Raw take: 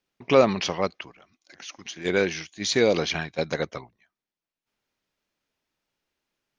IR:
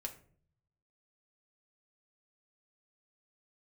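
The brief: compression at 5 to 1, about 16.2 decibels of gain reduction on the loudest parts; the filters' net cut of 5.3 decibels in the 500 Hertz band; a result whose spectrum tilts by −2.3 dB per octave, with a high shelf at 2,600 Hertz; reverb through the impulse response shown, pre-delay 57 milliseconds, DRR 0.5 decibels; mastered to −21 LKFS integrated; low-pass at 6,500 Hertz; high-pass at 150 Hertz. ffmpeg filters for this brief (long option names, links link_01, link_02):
-filter_complex "[0:a]highpass=150,lowpass=6500,equalizer=frequency=500:width_type=o:gain=-6.5,highshelf=frequency=2600:gain=9,acompressor=threshold=-34dB:ratio=5,asplit=2[link_01][link_02];[1:a]atrim=start_sample=2205,adelay=57[link_03];[link_02][link_03]afir=irnorm=-1:irlink=0,volume=1.5dB[link_04];[link_01][link_04]amix=inputs=2:normalize=0,volume=13.5dB"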